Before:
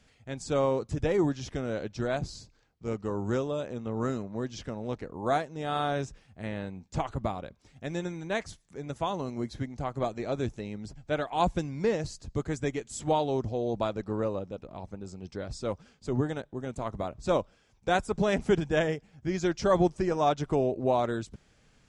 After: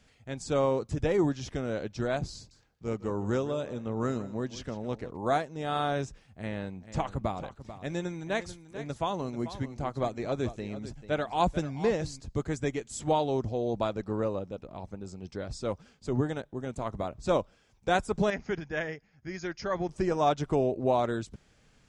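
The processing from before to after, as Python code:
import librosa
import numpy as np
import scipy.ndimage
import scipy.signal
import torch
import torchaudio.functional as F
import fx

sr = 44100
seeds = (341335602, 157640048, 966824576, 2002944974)

y = fx.echo_single(x, sr, ms=158, db=-15.5, at=(2.35, 5.17))
y = fx.echo_single(y, sr, ms=440, db=-13.0, at=(6.53, 12.19), fade=0.02)
y = fx.cheby_ripple(y, sr, hz=6800.0, ripple_db=9, at=(18.3, 19.89))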